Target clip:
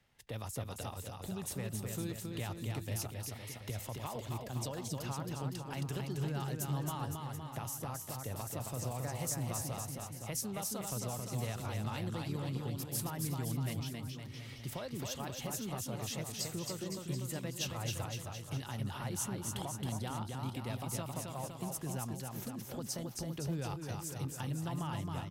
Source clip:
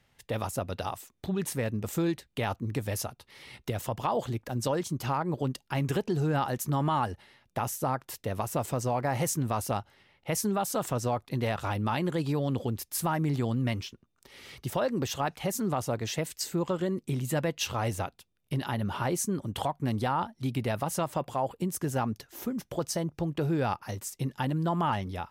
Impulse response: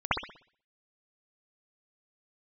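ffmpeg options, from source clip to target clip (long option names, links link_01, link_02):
-filter_complex "[0:a]acrossover=split=140|3000[link_01][link_02][link_03];[link_02]acompressor=threshold=-43dB:ratio=2[link_04];[link_01][link_04][link_03]amix=inputs=3:normalize=0,asplit=2[link_05][link_06];[link_06]aecho=0:1:270|513|731.7|928.5|1106:0.631|0.398|0.251|0.158|0.1[link_07];[link_05][link_07]amix=inputs=2:normalize=0,volume=-5.5dB"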